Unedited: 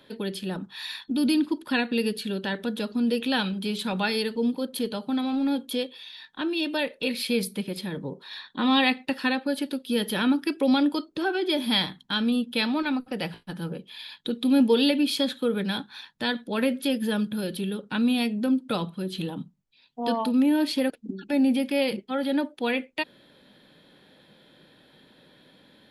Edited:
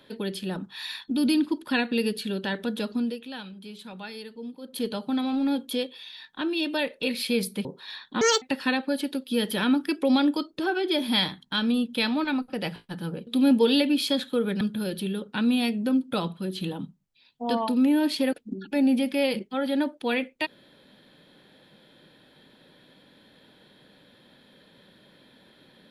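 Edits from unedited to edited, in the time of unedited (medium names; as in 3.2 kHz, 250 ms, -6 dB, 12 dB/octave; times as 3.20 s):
2.95–4.85 s: dip -13 dB, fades 0.23 s
7.65–8.08 s: delete
8.64–9.00 s: speed 173%
13.85–14.36 s: delete
15.70–17.18 s: delete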